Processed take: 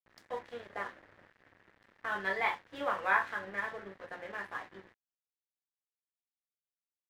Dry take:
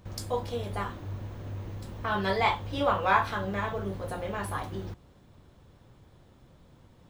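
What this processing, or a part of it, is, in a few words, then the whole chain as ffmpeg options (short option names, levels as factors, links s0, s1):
pocket radio on a weak battery: -filter_complex "[0:a]asettb=1/sr,asplit=3[s0][s1][s2];[s0]atrim=end=0.674[s3];[s1]atrim=start=0.67:end=1.31,asetpts=PTS-STARTPTS,afade=t=in:d=0.004:c=qsin,afade=t=out:st=0.636:d=0.004:c=qsin,adynamicequalizer=threshold=0.00251:dfrequency=570:dqfactor=1.8:tfrequency=570:tqfactor=1.8:attack=5:release=100:ratio=0.375:range=3.5:mode=boostabove:tftype=bell[s4];[s2]atrim=start=1.306[s5];[s3][s4]acrossfade=d=0.004:c1=hsin:c2=qsin[s6];[s6][s5]acrossfade=d=0.004:c1=qsin:c2=hsin,highpass=270,lowpass=3300,aeval=exprs='sgn(val(0))*max(abs(val(0))-0.00562,0)':c=same,equalizer=f=1800:t=o:w=0.57:g=12,volume=0.398"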